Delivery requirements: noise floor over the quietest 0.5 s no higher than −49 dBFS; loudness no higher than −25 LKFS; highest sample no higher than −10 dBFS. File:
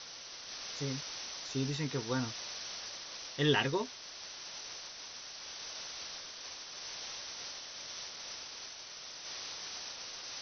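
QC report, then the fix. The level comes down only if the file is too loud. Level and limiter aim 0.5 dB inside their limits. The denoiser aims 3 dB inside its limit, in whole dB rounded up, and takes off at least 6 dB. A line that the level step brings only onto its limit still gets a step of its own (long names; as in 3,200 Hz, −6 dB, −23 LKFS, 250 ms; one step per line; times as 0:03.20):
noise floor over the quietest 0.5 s −48 dBFS: out of spec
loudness −38.5 LKFS: in spec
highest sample −16.0 dBFS: in spec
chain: broadband denoise 6 dB, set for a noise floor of −48 dBFS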